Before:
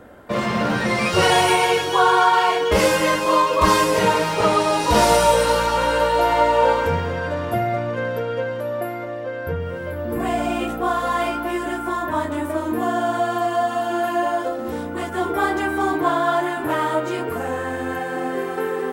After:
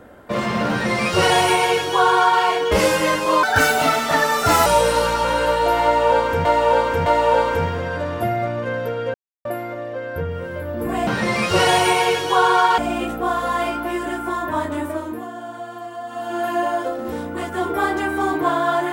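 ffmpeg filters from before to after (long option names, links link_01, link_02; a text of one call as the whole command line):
ffmpeg -i in.wav -filter_complex "[0:a]asplit=11[link_01][link_02][link_03][link_04][link_05][link_06][link_07][link_08][link_09][link_10][link_11];[link_01]atrim=end=3.434[link_12];[link_02]atrim=start=3.43:end=5.19,asetpts=PTS-STARTPTS,asetrate=63063,aresample=44100[link_13];[link_03]atrim=start=5.186:end=6.982[link_14];[link_04]atrim=start=6.368:end=6.982[link_15];[link_05]atrim=start=6.368:end=8.45,asetpts=PTS-STARTPTS,afade=type=out:start_time=2.078:duration=0.004:curve=hsin[link_16];[link_06]atrim=start=8.45:end=8.76,asetpts=PTS-STARTPTS,volume=0[link_17];[link_07]atrim=start=8.76:end=10.382,asetpts=PTS-STARTPTS,afade=type=in:duration=0.004:curve=hsin[link_18];[link_08]atrim=start=0.698:end=2.412[link_19];[link_09]atrim=start=10.378:end=12.88,asetpts=PTS-STARTPTS,afade=type=out:start_time=2.032:duration=0.47:silence=0.266073[link_20];[link_10]atrim=start=12.88:end=13.64,asetpts=PTS-STARTPTS,volume=-11.5dB[link_21];[link_11]atrim=start=13.64,asetpts=PTS-STARTPTS,afade=type=in:duration=0.47:silence=0.266073[link_22];[link_12][link_13]acrossfade=duration=0.004:curve1=hsin:curve2=hsin[link_23];[link_23][link_14]acrossfade=duration=0.004:curve1=hsin:curve2=hsin[link_24];[link_24][link_15]acrossfade=duration=0.004:curve1=hsin:curve2=hsin[link_25];[link_16][link_17][link_18]concat=n=3:v=0:a=1[link_26];[link_25][link_26]acrossfade=duration=0.004:curve1=hsin:curve2=hsin[link_27];[link_27][link_19]acrossfade=duration=0.004:curve1=hsin:curve2=hsin[link_28];[link_20][link_21][link_22]concat=n=3:v=0:a=1[link_29];[link_28][link_29]acrossfade=duration=0.004:curve1=hsin:curve2=hsin" out.wav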